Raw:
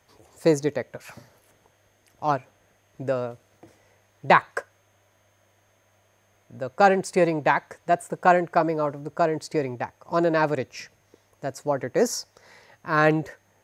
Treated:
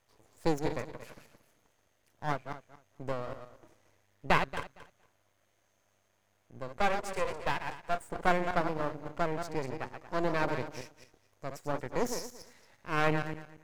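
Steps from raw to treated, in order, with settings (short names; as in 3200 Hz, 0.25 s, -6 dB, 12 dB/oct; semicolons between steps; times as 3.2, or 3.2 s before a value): regenerating reverse delay 0.115 s, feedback 40%, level -7 dB; 6.77–7.99 elliptic high-pass 410 Hz; half-wave rectifier; gain -6.5 dB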